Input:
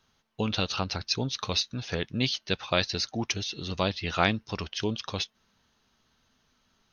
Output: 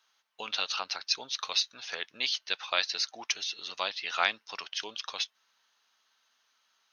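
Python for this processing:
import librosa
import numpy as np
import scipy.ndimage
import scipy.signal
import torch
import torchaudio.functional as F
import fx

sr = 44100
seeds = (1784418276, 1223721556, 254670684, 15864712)

y = scipy.signal.sosfilt(scipy.signal.butter(2, 950.0, 'highpass', fs=sr, output='sos'), x)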